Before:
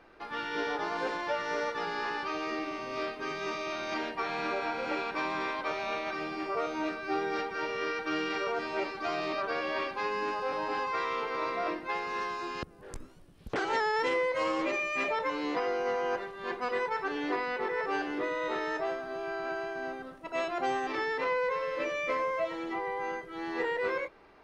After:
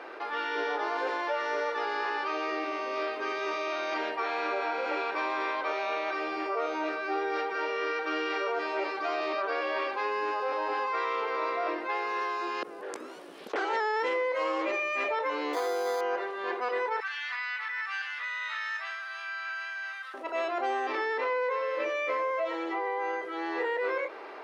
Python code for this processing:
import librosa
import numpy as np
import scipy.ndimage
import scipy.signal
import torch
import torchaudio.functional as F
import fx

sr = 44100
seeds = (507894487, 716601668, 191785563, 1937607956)

y = fx.resample_bad(x, sr, factor=8, down='filtered', up='hold', at=(15.53, 16.01))
y = fx.highpass(y, sr, hz=1500.0, slope=24, at=(17.0, 20.14))
y = scipy.signal.sosfilt(scipy.signal.butter(4, 350.0, 'highpass', fs=sr, output='sos'), y)
y = fx.high_shelf(y, sr, hz=5500.0, db=-11.0)
y = fx.env_flatten(y, sr, amount_pct=50)